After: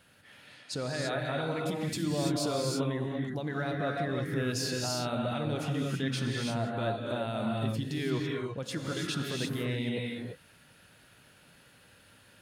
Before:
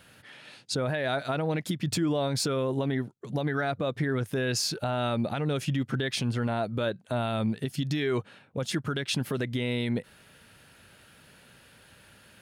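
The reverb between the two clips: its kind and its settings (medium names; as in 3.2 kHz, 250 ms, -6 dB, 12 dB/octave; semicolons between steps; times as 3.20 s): gated-style reverb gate 360 ms rising, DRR -0.5 dB; trim -6.5 dB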